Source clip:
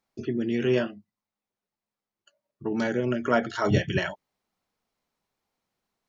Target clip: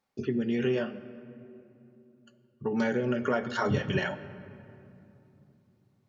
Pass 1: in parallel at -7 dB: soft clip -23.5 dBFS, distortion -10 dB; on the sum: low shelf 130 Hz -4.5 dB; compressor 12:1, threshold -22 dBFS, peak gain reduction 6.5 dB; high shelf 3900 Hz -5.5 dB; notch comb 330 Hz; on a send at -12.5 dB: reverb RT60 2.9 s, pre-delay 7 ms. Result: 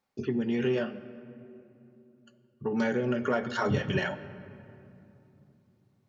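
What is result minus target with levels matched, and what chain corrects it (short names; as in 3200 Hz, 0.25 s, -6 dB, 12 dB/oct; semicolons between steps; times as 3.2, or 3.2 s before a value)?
soft clip: distortion +14 dB
in parallel at -7 dB: soft clip -12 dBFS, distortion -24 dB; on the sum: low shelf 130 Hz -4.5 dB; compressor 12:1, threshold -22 dBFS, peak gain reduction 8 dB; high shelf 3900 Hz -5.5 dB; notch comb 330 Hz; on a send at -12.5 dB: reverb RT60 2.9 s, pre-delay 7 ms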